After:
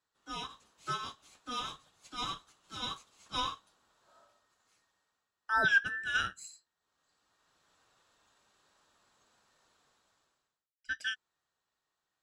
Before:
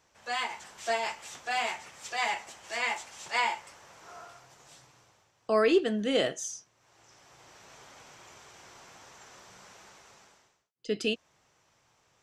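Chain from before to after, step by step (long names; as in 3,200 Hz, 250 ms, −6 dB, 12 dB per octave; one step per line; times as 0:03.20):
frequency inversion band by band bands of 2,000 Hz
expander for the loud parts 1.5 to 1, over −50 dBFS
level −2.5 dB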